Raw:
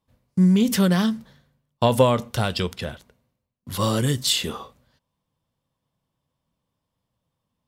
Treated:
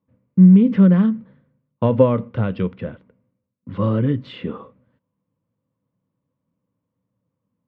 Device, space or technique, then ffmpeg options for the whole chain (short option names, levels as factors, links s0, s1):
bass cabinet: -af "highpass=85,equalizer=f=110:t=q:w=4:g=8,equalizer=f=190:t=q:w=4:g=9,equalizer=f=280:t=q:w=4:g=9,equalizer=f=500:t=q:w=4:g=7,equalizer=f=750:t=q:w=4:g=-8,equalizer=f=1700:t=q:w=4:g=-4,lowpass=f=2200:w=0.5412,lowpass=f=2200:w=1.3066,volume=0.794"